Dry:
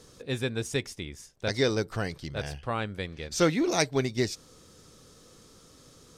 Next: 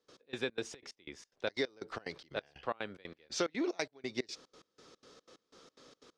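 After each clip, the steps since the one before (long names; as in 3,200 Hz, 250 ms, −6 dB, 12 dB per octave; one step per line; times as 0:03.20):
three-way crossover with the lows and the highs turned down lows −19 dB, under 250 Hz, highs −24 dB, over 5,600 Hz
downward compressor 6 to 1, threshold −30 dBFS, peak gain reduction 11 dB
gate pattern ".x..xx.xx" 182 BPM −24 dB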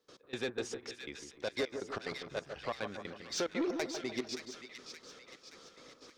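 soft clipping −30 dBFS, distortion −11 dB
on a send: echo with a time of its own for lows and highs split 1,500 Hz, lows 150 ms, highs 573 ms, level −6.5 dB
on the sum: level +2.5 dB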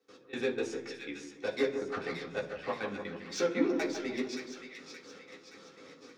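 convolution reverb RT60 0.45 s, pre-delay 3 ms, DRR −3 dB
level −4 dB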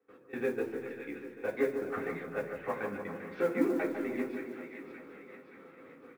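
low-pass filter 2,200 Hz 24 dB per octave
repeating echo 394 ms, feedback 53%, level −12 dB
noise that follows the level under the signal 30 dB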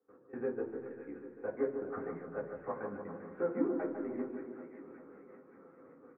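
low-pass filter 1,400 Hz 24 dB per octave
level −3.5 dB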